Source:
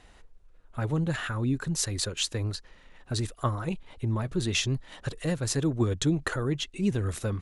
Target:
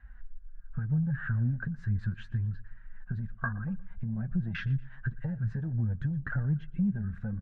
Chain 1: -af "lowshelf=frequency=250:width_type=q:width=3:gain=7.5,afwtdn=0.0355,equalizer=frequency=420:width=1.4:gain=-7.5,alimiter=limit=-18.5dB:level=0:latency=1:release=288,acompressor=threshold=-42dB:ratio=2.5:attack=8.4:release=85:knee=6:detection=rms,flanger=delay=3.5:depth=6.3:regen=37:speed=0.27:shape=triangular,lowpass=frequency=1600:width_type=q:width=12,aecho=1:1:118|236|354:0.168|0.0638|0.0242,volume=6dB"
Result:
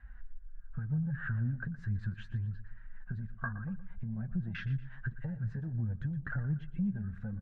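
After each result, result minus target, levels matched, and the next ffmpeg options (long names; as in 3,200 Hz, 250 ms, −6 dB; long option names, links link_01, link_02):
downward compressor: peak gain reduction +4.5 dB; echo-to-direct +6.5 dB
-af "lowshelf=frequency=250:width_type=q:width=3:gain=7.5,afwtdn=0.0355,equalizer=frequency=420:width=1.4:gain=-7.5,alimiter=limit=-18.5dB:level=0:latency=1:release=288,acompressor=threshold=-34.5dB:ratio=2.5:attack=8.4:release=85:knee=6:detection=rms,flanger=delay=3.5:depth=6.3:regen=37:speed=0.27:shape=triangular,lowpass=frequency=1600:width_type=q:width=12,aecho=1:1:118|236|354:0.168|0.0638|0.0242,volume=6dB"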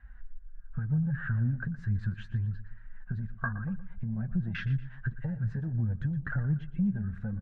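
echo-to-direct +6.5 dB
-af "lowshelf=frequency=250:width_type=q:width=3:gain=7.5,afwtdn=0.0355,equalizer=frequency=420:width=1.4:gain=-7.5,alimiter=limit=-18.5dB:level=0:latency=1:release=288,acompressor=threshold=-34.5dB:ratio=2.5:attack=8.4:release=85:knee=6:detection=rms,flanger=delay=3.5:depth=6.3:regen=37:speed=0.27:shape=triangular,lowpass=frequency=1600:width_type=q:width=12,aecho=1:1:118|236|354:0.0794|0.0302|0.0115,volume=6dB"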